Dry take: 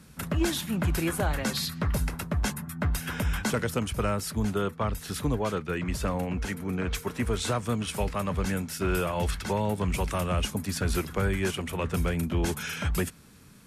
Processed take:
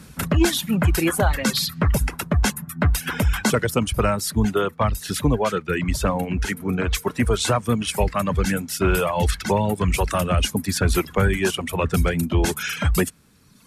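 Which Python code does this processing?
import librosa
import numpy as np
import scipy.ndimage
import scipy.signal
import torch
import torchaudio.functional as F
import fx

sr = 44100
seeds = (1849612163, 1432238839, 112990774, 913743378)

y = fx.dereverb_blind(x, sr, rt60_s=1.3)
y = y * librosa.db_to_amplitude(9.0)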